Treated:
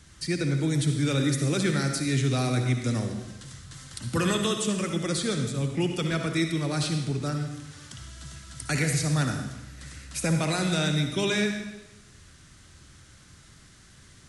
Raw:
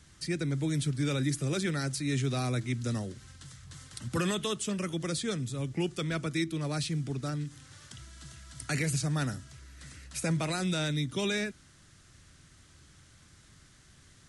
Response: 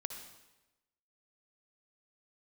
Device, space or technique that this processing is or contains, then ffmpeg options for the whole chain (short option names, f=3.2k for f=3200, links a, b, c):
bathroom: -filter_complex "[1:a]atrim=start_sample=2205[a];[0:a][a]afir=irnorm=-1:irlink=0,volume=6.5dB"